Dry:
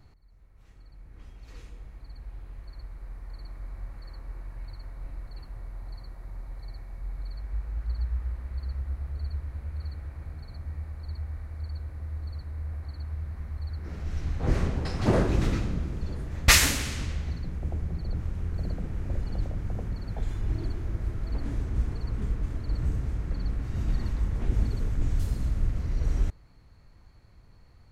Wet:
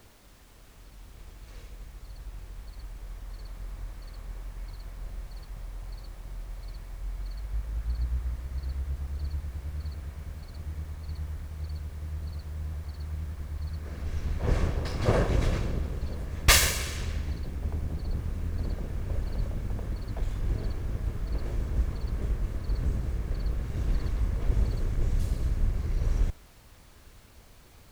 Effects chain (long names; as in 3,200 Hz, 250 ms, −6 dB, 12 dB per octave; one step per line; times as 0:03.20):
lower of the sound and its delayed copy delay 1.8 ms
background noise pink −57 dBFS